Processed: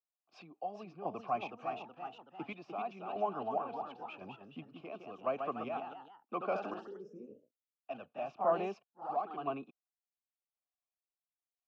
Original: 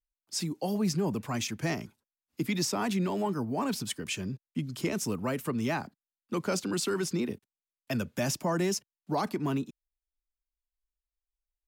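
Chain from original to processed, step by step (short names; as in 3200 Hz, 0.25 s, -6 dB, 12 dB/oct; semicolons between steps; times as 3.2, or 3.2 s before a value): vowel filter a; high shelf 6900 Hz -6 dB; chopper 0.95 Hz, depth 60%, duty 40%; air absorption 260 m; spectral gain 6.81–7.83, 580–5000 Hz -26 dB; echoes that change speed 0.434 s, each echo +1 st, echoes 3, each echo -6 dB; gain +9.5 dB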